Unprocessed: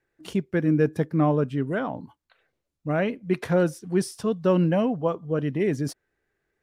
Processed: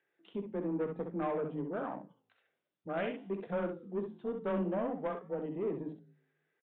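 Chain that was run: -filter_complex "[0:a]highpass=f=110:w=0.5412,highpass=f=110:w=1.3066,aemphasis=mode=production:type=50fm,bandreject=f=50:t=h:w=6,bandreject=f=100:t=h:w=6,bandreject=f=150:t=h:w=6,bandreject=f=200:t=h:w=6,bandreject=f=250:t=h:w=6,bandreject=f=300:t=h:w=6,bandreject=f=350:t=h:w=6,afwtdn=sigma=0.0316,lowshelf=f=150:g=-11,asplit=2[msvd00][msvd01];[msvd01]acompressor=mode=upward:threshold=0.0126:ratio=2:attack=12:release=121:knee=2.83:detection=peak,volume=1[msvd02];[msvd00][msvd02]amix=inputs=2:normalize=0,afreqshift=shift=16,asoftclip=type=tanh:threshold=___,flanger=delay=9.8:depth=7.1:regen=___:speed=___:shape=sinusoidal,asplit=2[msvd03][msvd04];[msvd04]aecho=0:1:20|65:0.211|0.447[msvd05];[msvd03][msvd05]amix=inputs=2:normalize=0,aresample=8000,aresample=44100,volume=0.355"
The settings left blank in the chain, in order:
0.188, -87, 0.56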